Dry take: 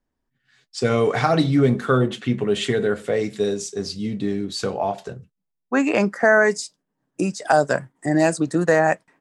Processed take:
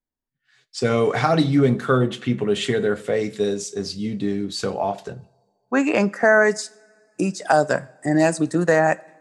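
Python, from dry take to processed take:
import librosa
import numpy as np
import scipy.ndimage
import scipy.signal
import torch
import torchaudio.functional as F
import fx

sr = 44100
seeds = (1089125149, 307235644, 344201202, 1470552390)

y = fx.rev_double_slope(x, sr, seeds[0], early_s=0.57, late_s=2.5, knee_db=-18, drr_db=19.0)
y = fx.noise_reduce_blind(y, sr, reduce_db=13)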